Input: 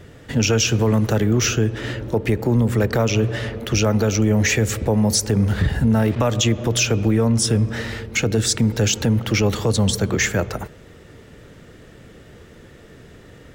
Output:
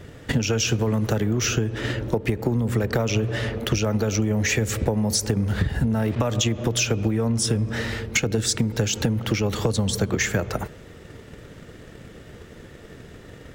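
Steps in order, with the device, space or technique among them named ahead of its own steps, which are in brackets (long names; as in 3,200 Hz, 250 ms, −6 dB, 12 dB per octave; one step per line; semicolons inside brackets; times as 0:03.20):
drum-bus smash (transient designer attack +8 dB, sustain +1 dB; downward compressor, threshold −18 dBFS, peak gain reduction 10 dB; soft clipping −8.5 dBFS, distortion −25 dB)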